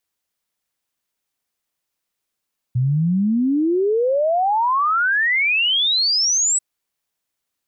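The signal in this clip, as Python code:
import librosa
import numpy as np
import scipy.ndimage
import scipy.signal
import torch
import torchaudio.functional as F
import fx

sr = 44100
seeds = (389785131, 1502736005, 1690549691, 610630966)

y = fx.ess(sr, length_s=3.84, from_hz=120.0, to_hz=8000.0, level_db=-15.0)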